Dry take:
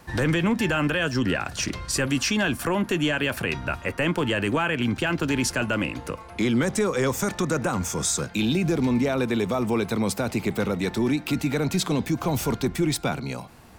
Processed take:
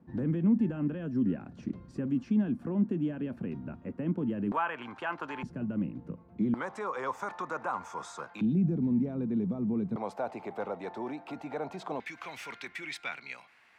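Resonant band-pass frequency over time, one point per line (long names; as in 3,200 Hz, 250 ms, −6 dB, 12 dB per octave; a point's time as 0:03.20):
resonant band-pass, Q 2.6
220 Hz
from 0:04.52 1,000 Hz
from 0:05.43 190 Hz
from 0:06.54 1,000 Hz
from 0:08.41 190 Hz
from 0:09.96 760 Hz
from 0:12.00 2,100 Hz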